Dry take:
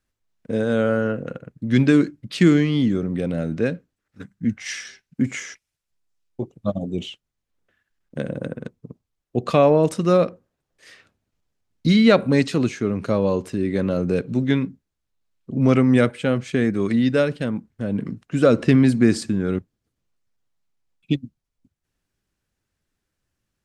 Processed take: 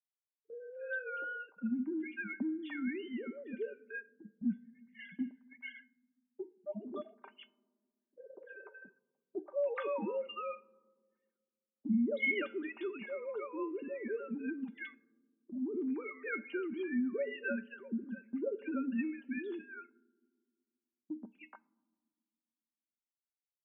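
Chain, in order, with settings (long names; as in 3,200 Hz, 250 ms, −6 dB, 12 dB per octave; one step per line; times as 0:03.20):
three sine waves on the formant tracks
multiband delay without the direct sound lows, highs 300 ms, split 670 Hz
in parallel at −2 dB: brickwall limiter −15 dBFS, peak gain reduction 11.5 dB
on the sum: tuned comb filter 310 Hz, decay 0.2 s, harmonics odd, mix 80%
noise gate −48 dBFS, range −14 dB
downward compressor 2.5 to 1, threshold −26 dBFS, peak gain reduction 11.5 dB
low-shelf EQ 400 Hz −9 dB
hum removal 431 Hz, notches 27
on a send at −22 dB: convolution reverb RT60 1.9 s, pre-delay 3 ms
on the sum: low-pass that shuts in the quiet parts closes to 690 Hz, open at −34 dBFS
parametric band 200 Hz +7.5 dB 0.57 octaves
comb filter 5 ms, depth 60%
level −4 dB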